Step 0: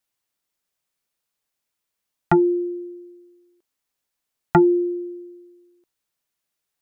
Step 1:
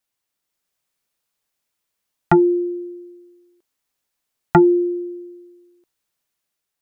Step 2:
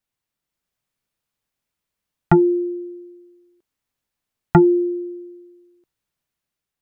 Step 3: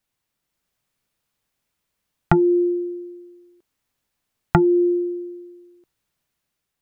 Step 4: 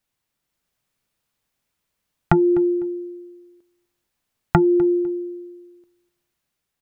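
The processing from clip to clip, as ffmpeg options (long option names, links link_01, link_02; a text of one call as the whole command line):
ffmpeg -i in.wav -af "dynaudnorm=framelen=140:gausssize=7:maxgain=3dB" out.wav
ffmpeg -i in.wav -af "bass=frequency=250:gain=8,treble=frequency=4000:gain=-4,volume=-2.5dB" out.wav
ffmpeg -i in.wav -af "acompressor=threshold=-18dB:ratio=6,volume=5dB" out.wav
ffmpeg -i in.wav -af "aecho=1:1:251|502:0.1|0.022" out.wav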